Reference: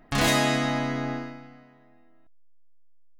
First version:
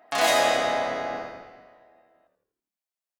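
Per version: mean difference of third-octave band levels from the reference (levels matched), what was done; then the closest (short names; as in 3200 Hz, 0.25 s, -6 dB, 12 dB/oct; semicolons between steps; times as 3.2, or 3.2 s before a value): 4.5 dB: HPF 530 Hz 12 dB/oct; bell 690 Hz +9 dB 0.58 oct; on a send: frequency-shifting echo 82 ms, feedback 50%, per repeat -74 Hz, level -9 dB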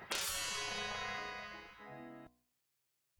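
13.5 dB: de-hum 61.1 Hz, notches 19; spectral gate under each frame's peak -15 dB weak; compressor 4:1, threshold -52 dBFS, peak gain reduction 18.5 dB; gain +11.5 dB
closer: first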